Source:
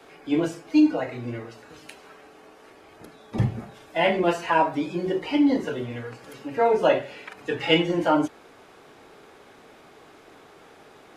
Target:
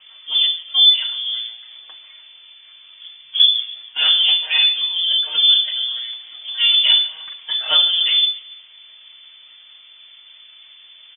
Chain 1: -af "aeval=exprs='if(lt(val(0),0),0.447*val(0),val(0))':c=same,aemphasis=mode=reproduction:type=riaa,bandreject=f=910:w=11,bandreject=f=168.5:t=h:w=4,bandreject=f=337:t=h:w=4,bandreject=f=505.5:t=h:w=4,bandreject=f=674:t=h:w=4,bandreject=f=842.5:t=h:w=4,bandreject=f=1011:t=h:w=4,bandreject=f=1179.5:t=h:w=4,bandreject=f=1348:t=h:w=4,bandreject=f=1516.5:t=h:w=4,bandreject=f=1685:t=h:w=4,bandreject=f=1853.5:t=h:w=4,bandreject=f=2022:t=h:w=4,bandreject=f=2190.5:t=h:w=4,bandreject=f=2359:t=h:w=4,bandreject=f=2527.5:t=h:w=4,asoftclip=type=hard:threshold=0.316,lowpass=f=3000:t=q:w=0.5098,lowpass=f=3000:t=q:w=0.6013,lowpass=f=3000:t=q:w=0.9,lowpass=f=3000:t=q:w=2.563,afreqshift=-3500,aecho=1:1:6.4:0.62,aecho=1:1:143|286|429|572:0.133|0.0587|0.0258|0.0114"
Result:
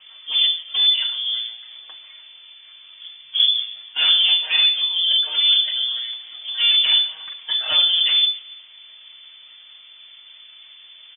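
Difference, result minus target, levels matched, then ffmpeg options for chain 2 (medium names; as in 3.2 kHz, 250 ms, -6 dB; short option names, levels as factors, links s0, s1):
hard clipper: distortion +36 dB
-af "aeval=exprs='if(lt(val(0),0),0.447*val(0),val(0))':c=same,aemphasis=mode=reproduction:type=riaa,bandreject=f=910:w=11,bandreject=f=168.5:t=h:w=4,bandreject=f=337:t=h:w=4,bandreject=f=505.5:t=h:w=4,bandreject=f=674:t=h:w=4,bandreject=f=842.5:t=h:w=4,bandreject=f=1011:t=h:w=4,bandreject=f=1179.5:t=h:w=4,bandreject=f=1348:t=h:w=4,bandreject=f=1516.5:t=h:w=4,bandreject=f=1685:t=h:w=4,bandreject=f=1853.5:t=h:w=4,bandreject=f=2022:t=h:w=4,bandreject=f=2190.5:t=h:w=4,bandreject=f=2359:t=h:w=4,bandreject=f=2527.5:t=h:w=4,asoftclip=type=hard:threshold=1,lowpass=f=3000:t=q:w=0.5098,lowpass=f=3000:t=q:w=0.6013,lowpass=f=3000:t=q:w=0.9,lowpass=f=3000:t=q:w=2.563,afreqshift=-3500,aecho=1:1:6.4:0.62,aecho=1:1:143|286|429|572:0.133|0.0587|0.0258|0.0114"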